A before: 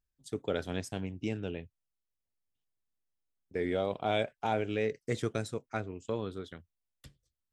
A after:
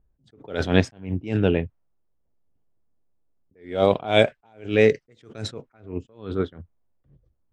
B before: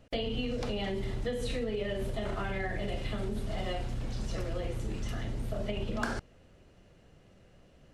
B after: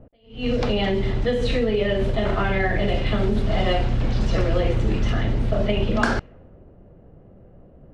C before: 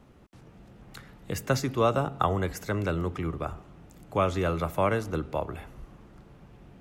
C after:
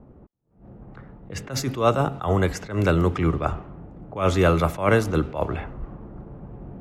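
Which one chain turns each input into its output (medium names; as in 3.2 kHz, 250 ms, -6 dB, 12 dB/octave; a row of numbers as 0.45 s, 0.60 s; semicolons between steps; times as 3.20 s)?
level-controlled noise filter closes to 680 Hz, open at -25 dBFS; gain riding within 5 dB 2 s; short-mantissa float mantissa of 8-bit; attacks held to a fixed rise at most 150 dB/s; normalise loudness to -23 LUFS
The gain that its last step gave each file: +16.5 dB, +13.0 dB, +8.0 dB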